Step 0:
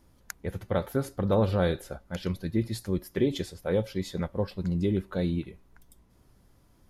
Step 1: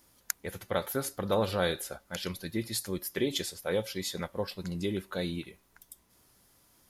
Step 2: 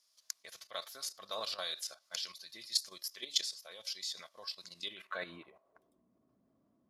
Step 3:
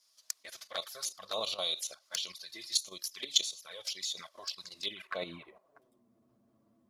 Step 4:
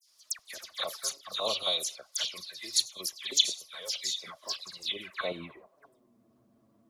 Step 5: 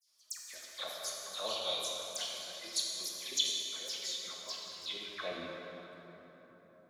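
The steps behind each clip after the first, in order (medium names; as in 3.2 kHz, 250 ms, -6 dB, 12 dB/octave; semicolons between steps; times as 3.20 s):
tilt EQ +3 dB/octave
band-pass sweep 5 kHz -> 240 Hz, 4.73–6.03 s; small resonant body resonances 650/1100 Hz, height 14 dB, ringing for 45 ms; level held to a coarse grid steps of 12 dB; trim +9.5 dB
touch-sensitive flanger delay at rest 9.5 ms, full sweep at -37.5 dBFS; trim +7 dB
phase dispersion lows, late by 88 ms, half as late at 2.7 kHz; trim +4 dB
plate-style reverb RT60 4.1 s, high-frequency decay 0.55×, pre-delay 0 ms, DRR -2 dB; trim -8.5 dB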